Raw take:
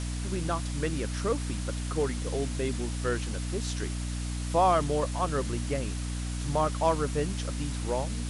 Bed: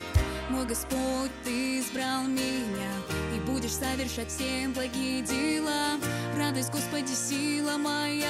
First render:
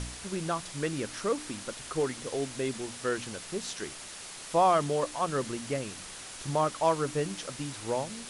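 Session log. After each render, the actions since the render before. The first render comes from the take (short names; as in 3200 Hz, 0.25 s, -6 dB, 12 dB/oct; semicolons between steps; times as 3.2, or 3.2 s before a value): de-hum 60 Hz, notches 5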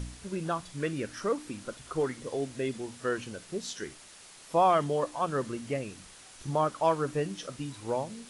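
noise print and reduce 8 dB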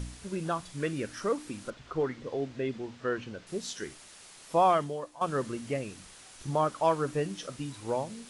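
1.7–3.47 air absorption 150 m; 4.71–5.21 fade out quadratic, to -12 dB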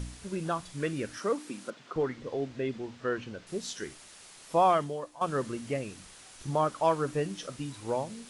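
1.18–1.96 HPF 170 Hz 24 dB/oct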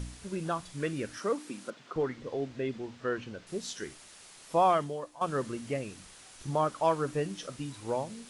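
gain -1 dB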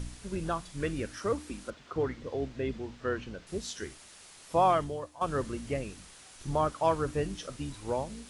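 octaver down 2 oct, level -5 dB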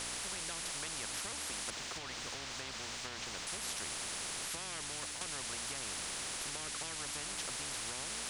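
compressor, threshold -33 dBFS, peak gain reduction 12.5 dB; spectral compressor 10:1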